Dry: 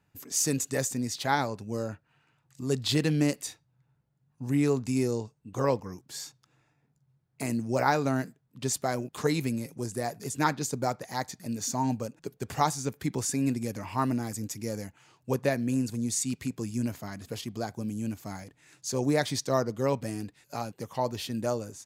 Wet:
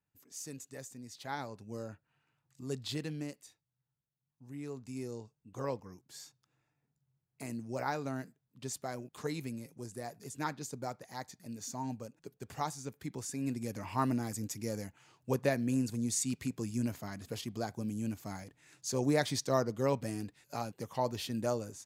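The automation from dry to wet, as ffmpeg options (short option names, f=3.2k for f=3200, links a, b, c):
-af "volume=6dB,afade=t=in:st=1.03:d=0.69:silence=0.398107,afade=t=out:st=2.68:d=0.76:silence=0.334965,afade=t=in:st=4.55:d=0.93:silence=0.375837,afade=t=in:st=13.32:d=0.57:silence=0.446684"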